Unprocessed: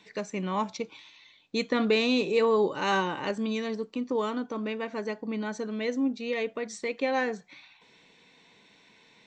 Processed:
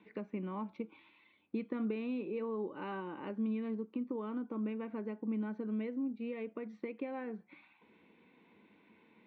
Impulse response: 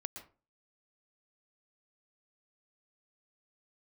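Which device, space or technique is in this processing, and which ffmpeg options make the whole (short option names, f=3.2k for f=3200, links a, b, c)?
bass amplifier: -af "acompressor=threshold=-37dB:ratio=3,highpass=73,equalizer=f=86:t=q:w=4:g=7,equalizer=f=130:t=q:w=4:g=-7,equalizer=f=220:t=q:w=4:g=8,equalizer=f=330:t=q:w=4:g=8,equalizer=f=690:t=q:w=4:g=-4,equalizer=f=1.8k:t=q:w=4:g=-7,lowpass=f=2.4k:w=0.5412,lowpass=f=2.4k:w=1.3066,volume=-4.5dB"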